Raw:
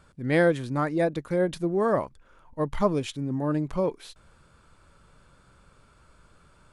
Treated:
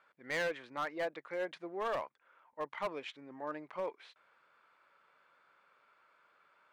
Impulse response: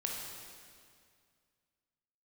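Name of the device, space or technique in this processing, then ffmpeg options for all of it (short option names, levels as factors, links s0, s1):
megaphone: -af "highpass=680,lowpass=2700,equalizer=f=2100:t=o:w=0.51:g=5,asoftclip=type=hard:threshold=0.0562,volume=0.531"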